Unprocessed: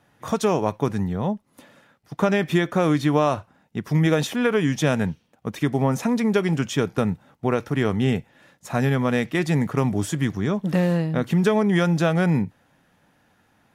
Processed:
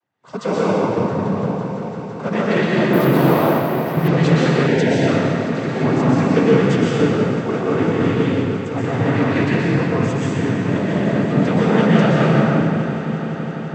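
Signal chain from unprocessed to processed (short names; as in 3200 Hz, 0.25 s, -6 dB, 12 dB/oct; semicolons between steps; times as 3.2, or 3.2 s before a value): noise vocoder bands 16; air absorption 62 m; swelling echo 0.168 s, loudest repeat 5, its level -15.5 dB; reverb RT60 3.0 s, pre-delay 0.112 s, DRR -6.5 dB; 2.93–4.08 careless resampling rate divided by 3×, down none, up hold; 4.67–5.08 Butterworth band-stop 1200 Hz, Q 2.4; three-band expander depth 40%; gain -1.5 dB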